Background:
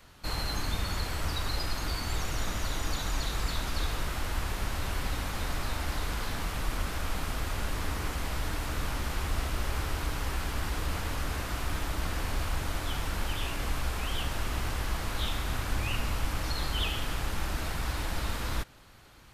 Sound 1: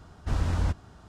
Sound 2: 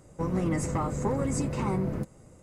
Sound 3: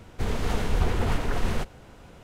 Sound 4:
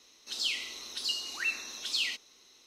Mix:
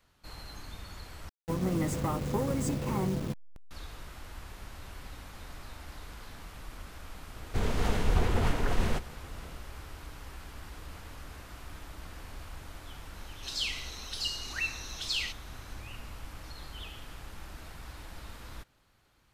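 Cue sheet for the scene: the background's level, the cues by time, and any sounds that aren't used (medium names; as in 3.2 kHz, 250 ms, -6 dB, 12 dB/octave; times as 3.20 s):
background -13 dB
1.29 s: replace with 2 -2 dB + send-on-delta sampling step -36 dBFS
7.35 s: add 3 -2 dB
13.16 s: add 4 -1.5 dB
not used: 1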